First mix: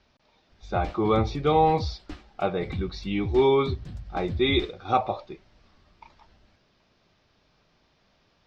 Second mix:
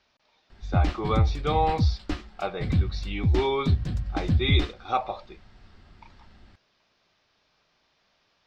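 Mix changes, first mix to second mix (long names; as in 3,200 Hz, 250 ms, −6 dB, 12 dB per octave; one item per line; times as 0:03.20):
speech: add low-shelf EQ 460 Hz −11.5 dB
background +9.5 dB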